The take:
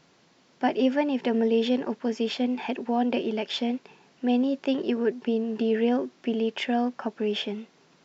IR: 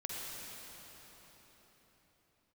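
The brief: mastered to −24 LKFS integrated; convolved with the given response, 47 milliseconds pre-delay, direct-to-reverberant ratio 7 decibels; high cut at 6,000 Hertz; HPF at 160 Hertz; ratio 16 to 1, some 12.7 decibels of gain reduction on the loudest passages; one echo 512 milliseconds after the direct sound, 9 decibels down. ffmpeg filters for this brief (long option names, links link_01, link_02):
-filter_complex "[0:a]highpass=160,lowpass=6000,acompressor=threshold=-32dB:ratio=16,aecho=1:1:512:0.355,asplit=2[link_01][link_02];[1:a]atrim=start_sample=2205,adelay=47[link_03];[link_02][link_03]afir=irnorm=-1:irlink=0,volume=-8.5dB[link_04];[link_01][link_04]amix=inputs=2:normalize=0,volume=12dB"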